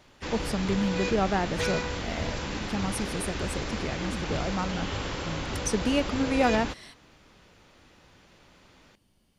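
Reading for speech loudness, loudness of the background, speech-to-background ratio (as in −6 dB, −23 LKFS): −30.5 LKFS, −33.0 LKFS, 2.5 dB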